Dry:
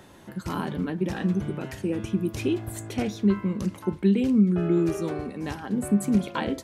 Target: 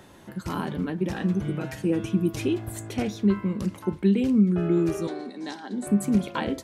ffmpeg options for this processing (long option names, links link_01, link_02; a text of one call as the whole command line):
ffmpeg -i in.wav -filter_complex "[0:a]asettb=1/sr,asplit=3[link_01][link_02][link_03];[link_01]atrim=end=1.444[link_04];[link_02]atrim=start=1.44:end=2.45,asetpts=PTS-STARTPTS,afade=type=in:duration=0.004:curve=qsin,afade=type=out:start_time=1.006:duration=0.004:curve=qsin,aecho=1:1:6.3:0.63,atrim=end_sample=44541[link_05];[link_03]atrim=start=2.446[link_06];[link_04][link_05]acrossfade=duration=0.004:curve1=hsin:curve2=qsin[link_07];[link_07][link_06]acrossfade=duration=0.004:curve1=qsin:curve2=hsin,asettb=1/sr,asplit=3[link_08][link_09][link_10];[link_08]atrim=end=3.234[link_11];[link_09]atrim=start=3.23:end=3.68,asetpts=PTS-STARTPTS,afade=type=in:duration=0.004:curve=qsin,afade=type=out:start_time=0.446:duration=0.004:curve=qsin,bandreject=frequency=6200:width=11[link_12];[link_10]atrim=start=3.676[link_13];[link_11][link_12]acrossfade=duration=0.004:curve1=hsin:curve2=qsin[link_14];[link_14][link_13]acrossfade=duration=0.004:curve1=qsin:curve2=hsin,asettb=1/sr,asplit=3[link_15][link_16][link_17];[link_15]atrim=end=5.074[link_18];[link_16]atrim=start=5.07:end=5.87,asetpts=PTS-STARTPTS,afade=type=in:duration=0.004:curve=qsin,afade=type=out:start_time=0.796:duration=0.004:curve=qsin,highpass=frequency=240:width=0.5412,highpass=frequency=240:width=1.3066,equalizer=frequency=490:width_type=q:width=4:gain=-8,equalizer=frequency=1200:width_type=q:width=4:gain=-8,equalizer=frequency=2600:width_type=q:width=4:gain=-9,equalizer=frequency=3900:width_type=q:width=4:gain=10,lowpass=frequency=8800:width=0.5412,lowpass=frequency=8800:width=1.3066[link_19];[link_17]atrim=start=5.866[link_20];[link_18][link_19]acrossfade=duration=0.004:curve1=hsin:curve2=qsin[link_21];[link_21][link_20]acrossfade=duration=0.004:curve1=qsin:curve2=hsin" out.wav